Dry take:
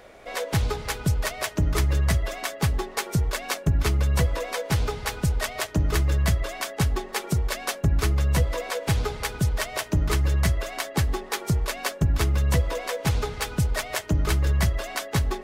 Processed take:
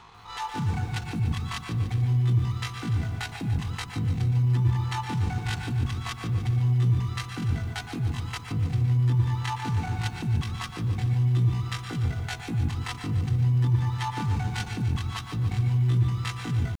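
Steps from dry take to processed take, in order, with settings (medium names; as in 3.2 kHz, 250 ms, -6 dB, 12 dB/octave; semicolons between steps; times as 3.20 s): peaking EQ 65 Hz +12 dB 0.63 oct; transient shaper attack -6 dB, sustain -10 dB; reverse; compression 8:1, threshold -23 dBFS, peak gain reduction 13.5 dB; reverse; pitch shift +11.5 st; Butterworth band-stop 650 Hz, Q 3.4; distance through air 61 m; on a send at -7 dB: reverberation RT60 0.35 s, pre-delay 101 ms; on the sum: speed mistake 48 kHz file played as 44.1 kHz; bit-crushed delay 146 ms, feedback 55%, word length 9-bit, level -9.5 dB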